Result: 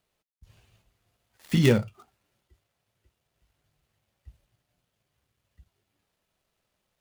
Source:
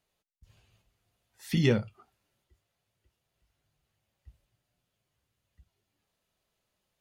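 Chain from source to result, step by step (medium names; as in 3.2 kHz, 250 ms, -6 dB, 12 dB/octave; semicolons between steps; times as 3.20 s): dead-time distortion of 0.089 ms; trim +4.5 dB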